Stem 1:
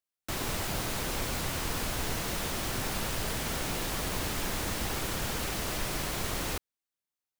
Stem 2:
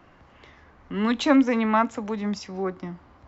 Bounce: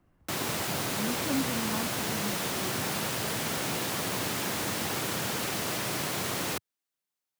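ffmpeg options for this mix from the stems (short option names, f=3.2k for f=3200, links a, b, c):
-filter_complex "[0:a]highpass=f=110:w=0.5412,highpass=f=110:w=1.3066,volume=2.5dB[a];[1:a]lowpass=f=1.5k:p=1,equalizer=f=990:w=0.31:g=-11,volume=-7dB[b];[a][b]amix=inputs=2:normalize=0"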